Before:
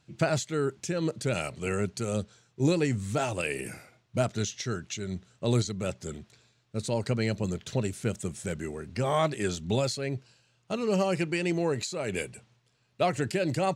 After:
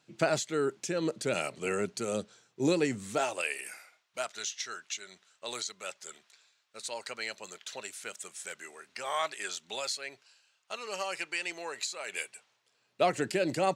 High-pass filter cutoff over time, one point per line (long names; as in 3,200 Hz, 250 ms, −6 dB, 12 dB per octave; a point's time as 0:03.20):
0:03.05 250 Hz
0:03.59 1,000 Hz
0:12.32 1,000 Hz
0:13.01 240 Hz